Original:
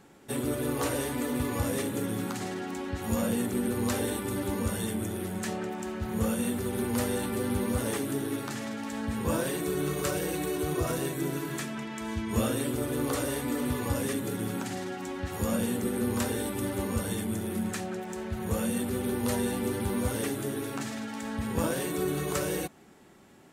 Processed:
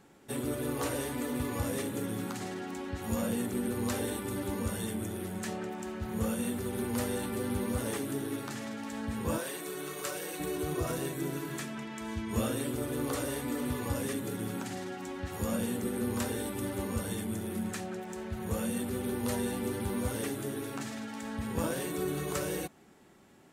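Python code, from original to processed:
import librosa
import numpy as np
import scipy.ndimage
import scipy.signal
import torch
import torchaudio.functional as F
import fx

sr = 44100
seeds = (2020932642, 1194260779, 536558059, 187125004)

y = fx.highpass(x, sr, hz=650.0, slope=6, at=(9.38, 10.4))
y = y * 10.0 ** (-3.5 / 20.0)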